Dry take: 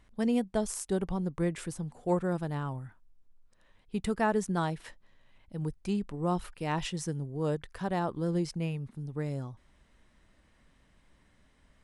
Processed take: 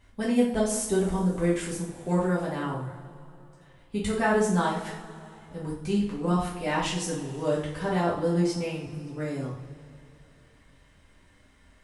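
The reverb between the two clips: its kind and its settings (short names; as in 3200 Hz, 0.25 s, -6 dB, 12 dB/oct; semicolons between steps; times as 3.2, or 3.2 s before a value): two-slope reverb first 0.46 s, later 3 s, from -20 dB, DRR -7 dB; gain -1 dB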